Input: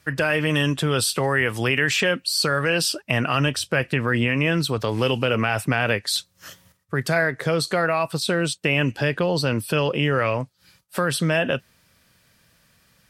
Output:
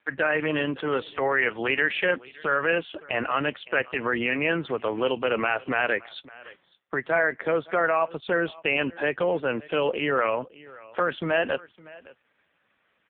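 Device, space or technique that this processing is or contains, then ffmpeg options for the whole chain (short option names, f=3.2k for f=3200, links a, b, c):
satellite phone: -af "highpass=310,lowpass=3.1k,aecho=1:1:564:0.0841" -ar 8000 -c:a libopencore_amrnb -b:a 4750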